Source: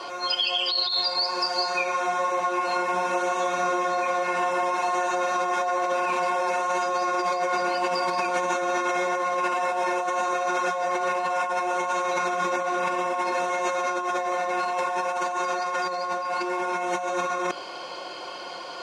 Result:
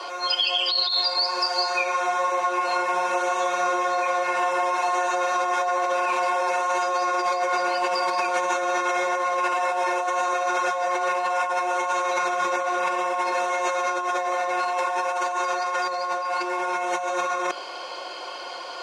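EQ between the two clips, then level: HPF 400 Hz 12 dB/oct; +2.0 dB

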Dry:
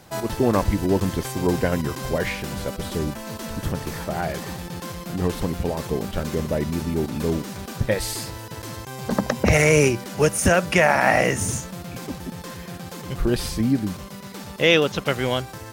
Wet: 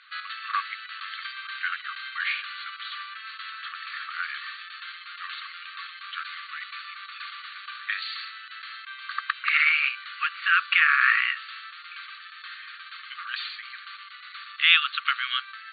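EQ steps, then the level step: brick-wall FIR band-pass 1100–4600 Hz; air absorption 83 m; dynamic EQ 2000 Hz, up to -5 dB, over -42 dBFS, Q 7; +4.5 dB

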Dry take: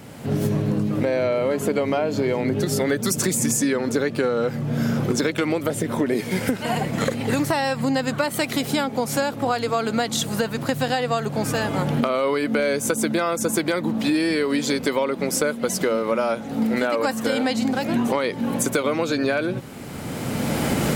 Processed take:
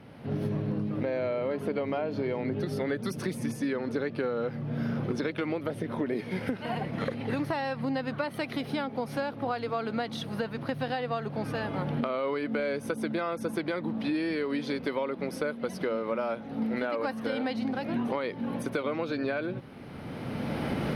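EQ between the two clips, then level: running mean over 6 samples; -8.5 dB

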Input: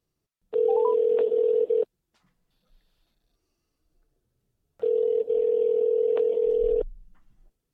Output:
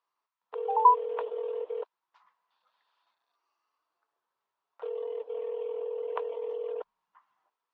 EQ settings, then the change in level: resonant high-pass 1000 Hz, resonance Q 5.7; air absorption 180 m; 0.0 dB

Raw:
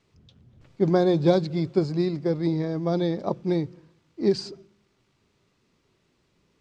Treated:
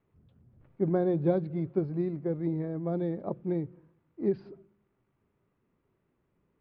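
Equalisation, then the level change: LPF 1900 Hz 12 dB/oct; dynamic EQ 980 Hz, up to -5 dB, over -41 dBFS, Q 1.9; air absorption 270 m; -5.5 dB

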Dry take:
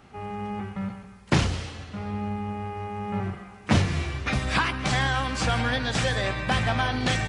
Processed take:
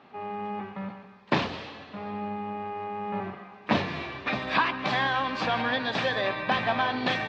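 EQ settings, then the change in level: speaker cabinet 340–3500 Hz, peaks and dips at 350 Hz -5 dB, 490 Hz -5 dB, 770 Hz -4 dB, 1400 Hz -9 dB, 2100 Hz -7 dB, 3000 Hz -7 dB; +5.5 dB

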